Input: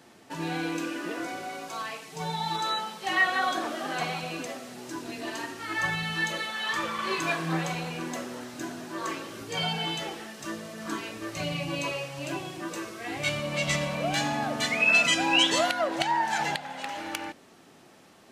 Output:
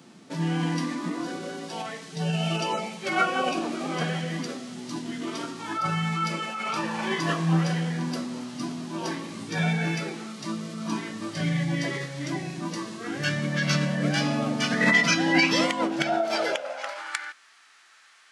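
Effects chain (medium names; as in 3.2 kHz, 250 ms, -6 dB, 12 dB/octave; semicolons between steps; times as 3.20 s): tone controls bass +2 dB, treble +4 dB; formant shift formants -5 st; high-pass sweep 170 Hz -> 1.5 kHz, 15.98–17.21 s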